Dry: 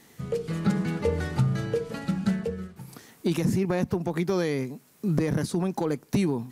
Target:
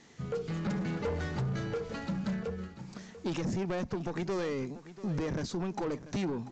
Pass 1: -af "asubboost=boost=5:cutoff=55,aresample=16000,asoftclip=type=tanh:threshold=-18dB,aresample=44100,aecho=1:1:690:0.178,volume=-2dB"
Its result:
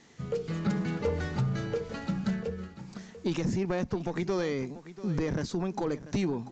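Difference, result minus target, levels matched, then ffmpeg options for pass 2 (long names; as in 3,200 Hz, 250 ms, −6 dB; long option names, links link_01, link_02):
soft clipping: distortion −9 dB
-af "asubboost=boost=5:cutoff=55,aresample=16000,asoftclip=type=tanh:threshold=-26.5dB,aresample=44100,aecho=1:1:690:0.178,volume=-2dB"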